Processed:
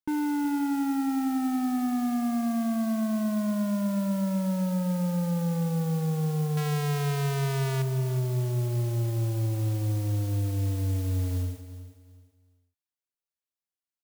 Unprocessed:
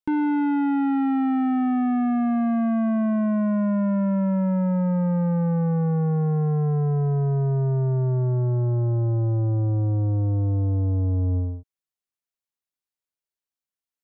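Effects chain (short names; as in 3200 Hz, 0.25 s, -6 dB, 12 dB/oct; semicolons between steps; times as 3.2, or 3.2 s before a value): 6.57–7.82 Schmitt trigger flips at -30.5 dBFS; modulation noise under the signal 20 dB; feedback echo 0.371 s, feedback 27%, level -13.5 dB; gain -5.5 dB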